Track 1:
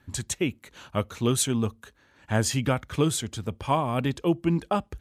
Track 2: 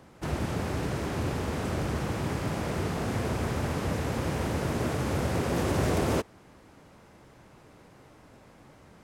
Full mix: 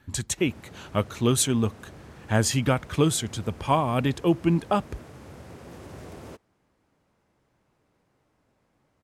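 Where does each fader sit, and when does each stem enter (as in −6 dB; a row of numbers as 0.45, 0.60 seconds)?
+2.0, −16.0 decibels; 0.00, 0.15 seconds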